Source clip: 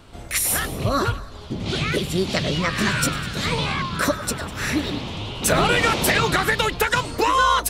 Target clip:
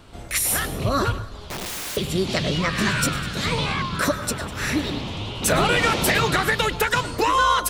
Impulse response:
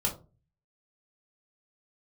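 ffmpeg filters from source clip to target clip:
-filter_complex "[0:a]asettb=1/sr,asplit=3[a][b][c];[a]atrim=end=1.394[d];[b]atrim=start=1.39:end=1.97,asetpts=PTS-STARTPTS,afade=t=in:d=0.004:c=qsin,afade=t=out:st=0.576:d=0.004:c=qsin,aeval=exprs='(mod(20*val(0)+1,2)-1)/20':c=same[e];[c]atrim=start=1.966[f];[d][e]acrossfade=d=0.004:c1=hsin:c2=qsin[g];[g][f]acrossfade=d=0.004:c1=qsin:c2=hsin,acontrast=44,asplit=2[h][i];[1:a]atrim=start_sample=2205,adelay=107[j];[i][j]afir=irnorm=-1:irlink=0,volume=-24dB[k];[h][k]amix=inputs=2:normalize=0,volume=-6dB"

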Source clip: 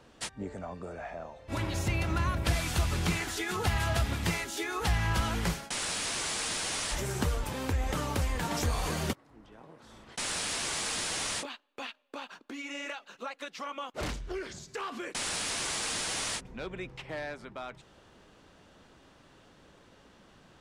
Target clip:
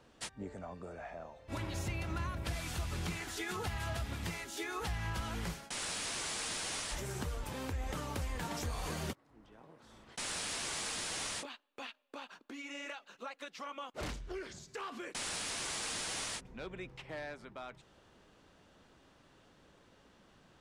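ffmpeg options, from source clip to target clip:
-af "alimiter=limit=-23dB:level=0:latency=1:release=327,volume=-5.5dB"

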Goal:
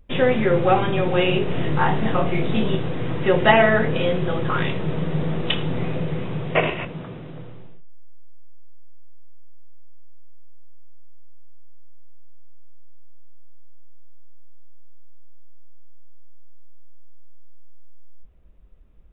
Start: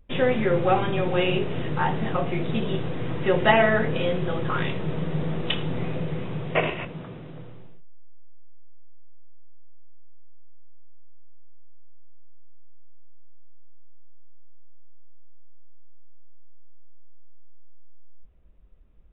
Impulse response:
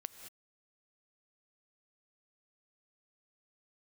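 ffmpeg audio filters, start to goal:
-filter_complex "[0:a]asettb=1/sr,asplit=3[a][b][c];[a]atrim=end=1.454[d];[b]atrim=start=1.45:end=2.75,asetpts=PTS-STARTPTS,afade=t=in:d=0.004:c=qsin,afade=t=out:st=1.296:d=0.004:c=qsin,asplit=2[e][f];[f]adelay=28,volume=-4dB[g];[e][g]amix=inputs=2:normalize=0,atrim=end_sample=57330[h];[c]atrim=start=2.746[i];[d][h]acrossfade=d=0.004:c1=hsin:c2=qsin[j];[j][i]acrossfade=d=0.004:c1=qsin:c2=hsin,volume=3.5dB"

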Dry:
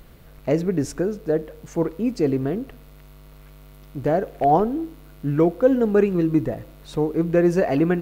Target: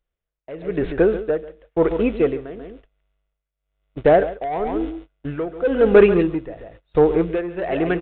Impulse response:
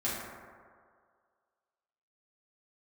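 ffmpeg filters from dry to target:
-filter_complex "[0:a]equalizer=f=125:t=o:w=1:g=-12,equalizer=f=250:t=o:w=1:g=-10,equalizer=f=1k:t=o:w=1:g=-4,aresample=8000,asoftclip=type=tanh:threshold=-17.5dB,aresample=44100,dynaudnorm=f=260:g=5:m=7.5dB,agate=range=-37dB:threshold=-32dB:ratio=16:detection=peak,asplit=2[a][b];[b]aecho=0:1:139:0.299[c];[a][c]amix=inputs=2:normalize=0,tremolo=f=1:d=0.86,volume=6.5dB"

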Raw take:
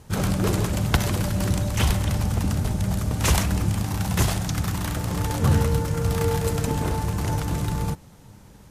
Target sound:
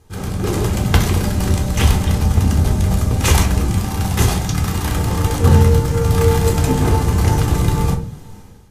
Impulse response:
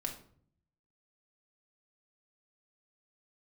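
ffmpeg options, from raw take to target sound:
-filter_complex "[1:a]atrim=start_sample=2205,asetrate=70560,aresample=44100[a];[0:a][a]afir=irnorm=-1:irlink=0,dynaudnorm=f=190:g=5:m=15dB"

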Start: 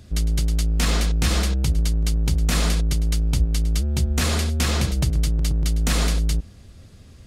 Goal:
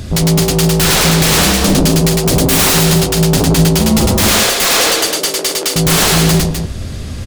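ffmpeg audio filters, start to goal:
-filter_complex "[0:a]asettb=1/sr,asplit=3[a][b][c];[a]atrim=end=2.204[d];[b]atrim=start=2.2:end=2.82,asetpts=PTS-STARTPTS,afade=t=in:d=0.004:c=qsin,afade=t=out:st=0.616:d=0.004:c=qsin,highshelf=f=11k:g=11.5[e];[c]atrim=start=2.816[f];[d][e]acrossfade=d=0.004:c1=hsin:c2=qsin[g];[g][f]acrossfade=d=0.004:c1=qsin:c2=hsin,asettb=1/sr,asplit=3[h][i][j];[h]atrim=end=4.284[k];[i]atrim=start=4.28:end=5.76,asetpts=PTS-STARTPTS,afade=t=in:d=0.004:c=qsin,afade=t=out:st=1.476:d=0.004:c=qsin,highpass=f=410:w=0.5412,highpass=f=410:w=1.3066[l];[j]atrim=start=5.756[m];[k][l]acrossfade=d=0.004:c1=hsin:c2=qsin[n];[n][m]acrossfade=d=0.004:c1=qsin:c2=hsin,aeval=exprs='0.398*sin(PI/2*7.94*val(0)/0.398)':c=same,flanger=delay=7.5:depth=7:regen=-80:speed=0.38:shape=sinusoidal,aecho=1:1:105|253.6:0.794|0.447,volume=2.5dB"

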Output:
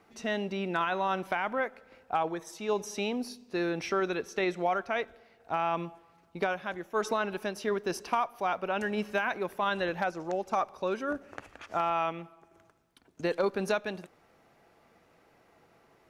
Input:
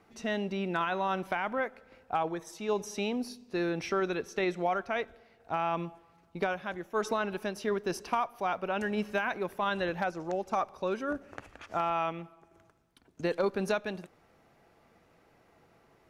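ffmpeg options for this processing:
-af "lowshelf=f=180:g=-5.5,volume=1.5dB"

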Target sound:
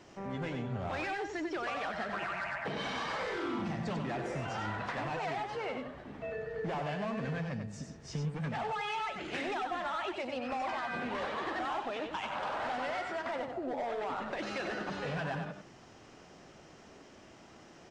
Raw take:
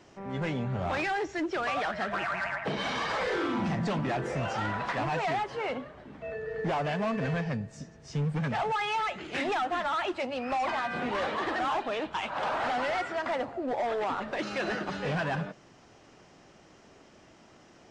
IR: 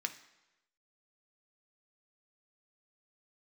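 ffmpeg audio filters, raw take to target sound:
-af "acompressor=threshold=-35dB:ratio=6,aecho=1:1:95:0.501"

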